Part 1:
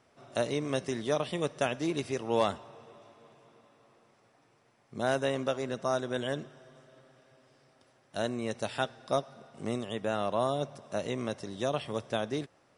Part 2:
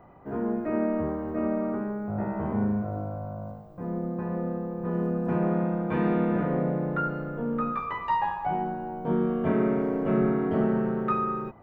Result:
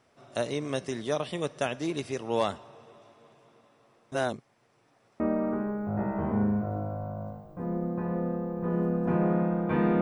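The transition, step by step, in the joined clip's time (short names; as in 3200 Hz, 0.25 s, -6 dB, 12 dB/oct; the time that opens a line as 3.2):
part 1
4.12–5.2 reverse
5.2 switch to part 2 from 1.41 s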